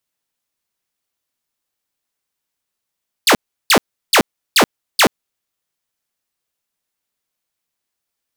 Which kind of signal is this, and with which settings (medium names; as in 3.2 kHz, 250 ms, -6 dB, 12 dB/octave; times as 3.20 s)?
burst of laser zaps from 5.3 kHz, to 170 Hz, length 0.08 s saw, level -5 dB, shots 5, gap 0.35 s